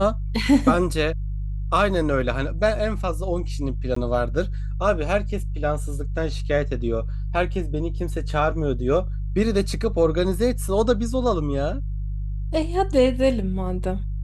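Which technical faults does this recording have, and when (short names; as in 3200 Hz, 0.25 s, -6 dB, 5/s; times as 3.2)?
hum 50 Hz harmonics 3 -27 dBFS
3.95–3.96 gap 14 ms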